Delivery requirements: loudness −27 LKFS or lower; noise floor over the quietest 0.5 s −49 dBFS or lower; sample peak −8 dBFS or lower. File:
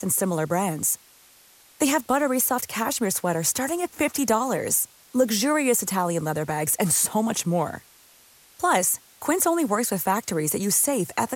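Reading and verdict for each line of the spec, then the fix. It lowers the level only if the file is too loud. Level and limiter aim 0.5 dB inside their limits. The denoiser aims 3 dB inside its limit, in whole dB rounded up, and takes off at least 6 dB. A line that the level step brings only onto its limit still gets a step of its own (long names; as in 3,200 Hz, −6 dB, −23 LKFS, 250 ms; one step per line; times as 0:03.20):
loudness −23.5 LKFS: out of spec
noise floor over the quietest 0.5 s −54 dBFS: in spec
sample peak −8.5 dBFS: in spec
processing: level −4 dB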